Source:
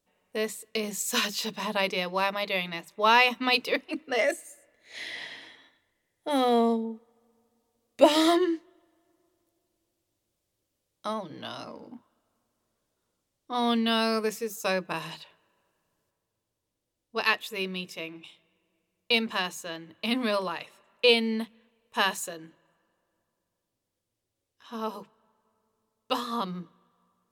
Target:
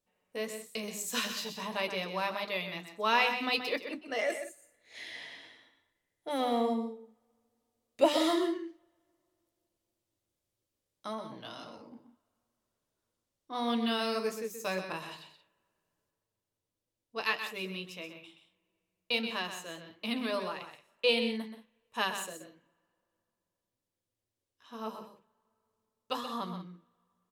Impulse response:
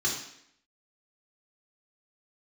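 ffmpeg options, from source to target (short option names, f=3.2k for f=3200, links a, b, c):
-af "flanger=delay=8.3:depth=3.5:regen=-58:speed=1.6:shape=sinusoidal,aecho=1:1:127|178:0.355|0.168,volume=-2.5dB"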